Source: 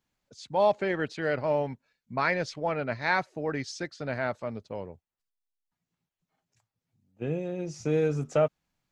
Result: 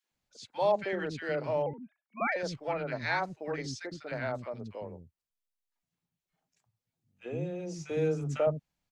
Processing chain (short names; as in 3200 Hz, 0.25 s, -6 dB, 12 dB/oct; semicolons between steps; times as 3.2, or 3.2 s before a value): 1.62–2.32 sine-wave speech; three bands offset in time highs, mids, lows 40/110 ms, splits 300/1300 Hz; gain -2.5 dB